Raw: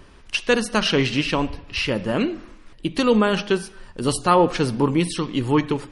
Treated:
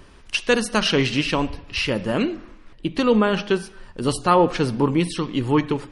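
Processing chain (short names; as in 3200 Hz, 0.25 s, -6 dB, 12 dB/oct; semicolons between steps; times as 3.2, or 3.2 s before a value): high shelf 6400 Hz +2.5 dB, from 2.36 s -11.5 dB, from 3.4 s -5.5 dB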